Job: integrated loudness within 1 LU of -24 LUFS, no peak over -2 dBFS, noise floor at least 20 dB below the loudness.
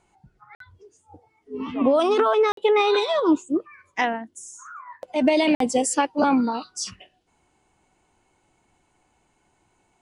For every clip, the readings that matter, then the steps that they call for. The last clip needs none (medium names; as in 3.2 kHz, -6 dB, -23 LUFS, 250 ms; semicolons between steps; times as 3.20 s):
dropouts 3; longest dropout 53 ms; loudness -22.0 LUFS; peak level -7.5 dBFS; loudness target -24.0 LUFS
-> interpolate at 0.55/2.52/5.55 s, 53 ms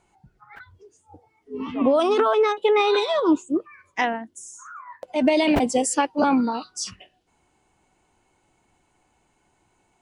dropouts 0; loudness -22.0 LUFS; peak level -7.5 dBFS; loudness target -24.0 LUFS
-> trim -2 dB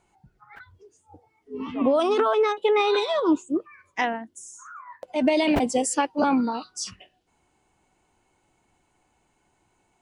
loudness -24.0 LUFS; peak level -9.5 dBFS; noise floor -70 dBFS